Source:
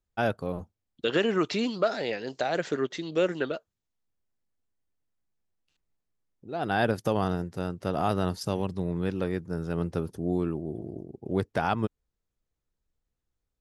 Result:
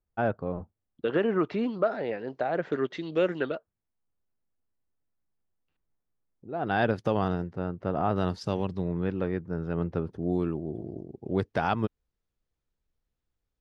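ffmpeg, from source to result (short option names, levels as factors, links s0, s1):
-af "asetnsamples=n=441:p=0,asendcmd='2.72 lowpass f 3200;3.55 lowpass f 1700;6.67 lowpass f 3600;7.53 lowpass f 1800;8.16 lowpass f 4500;8.88 lowpass f 2400;10.23 lowpass f 5400',lowpass=1600"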